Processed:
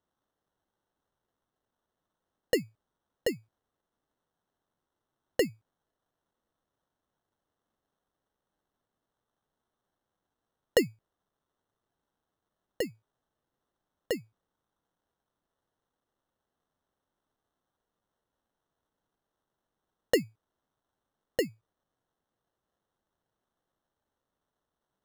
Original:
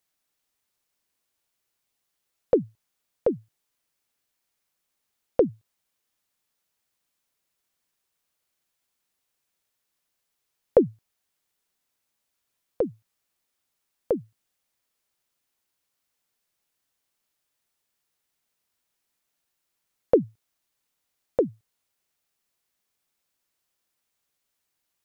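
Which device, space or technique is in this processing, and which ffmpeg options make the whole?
crushed at another speed: -af "asetrate=22050,aresample=44100,acrusher=samples=37:mix=1:aa=0.000001,asetrate=88200,aresample=44100,volume=-6.5dB"

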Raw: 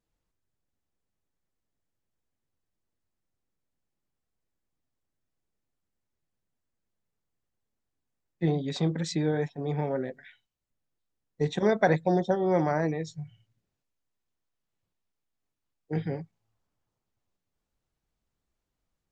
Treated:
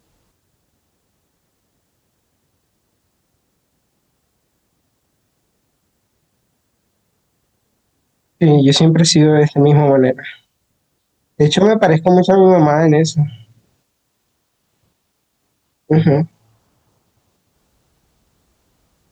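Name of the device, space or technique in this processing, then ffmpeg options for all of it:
mastering chain: -af "highpass=55,equalizer=frequency=2000:width_type=o:width=1.1:gain=-3,acompressor=threshold=-26dB:ratio=3,asoftclip=type=hard:threshold=-19dB,alimiter=level_in=25dB:limit=-1dB:release=50:level=0:latency=1,volume=-1dB"

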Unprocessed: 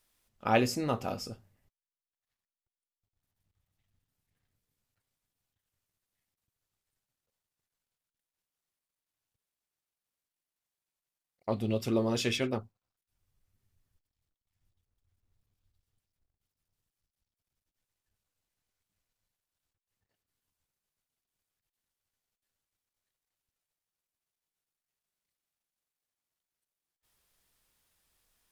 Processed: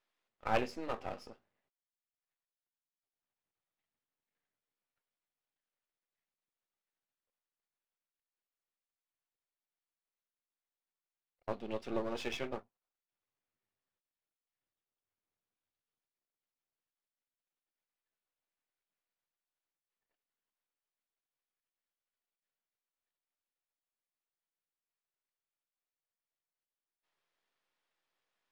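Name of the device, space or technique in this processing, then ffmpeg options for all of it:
crystal radio: -af "highpass=360,lowpass=3000,aeval=exprs='if(lt(val(0),0),0.251*val(0),val(0))':channel_layout=same,volume=-1.5dB"

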